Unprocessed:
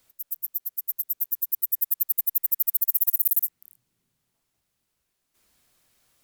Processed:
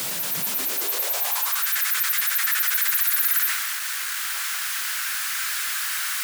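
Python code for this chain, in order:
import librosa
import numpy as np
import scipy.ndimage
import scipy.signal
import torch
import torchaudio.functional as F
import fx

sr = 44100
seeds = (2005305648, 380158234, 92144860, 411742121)

y = x + 0.5 * 10.0 ** (-29.5 / 20.0) * np.sign(x)
y = fx.peak_eq(y, sr, hz=130.0, db=-11.5, octaves=2.9)
y = fx.power_curve(y, sr, exponent=0.7)
y = fx.transient(y, sr, attack_db=-5, sustain_db=4)
y = fx.filter_sweep_highpass(y, sr, from_hz=160.0, to_hz=1500.0, start_s=0.35, end_s=1.69, q=3.2)
y = y * librosa.db_to_amplitude(-1.5)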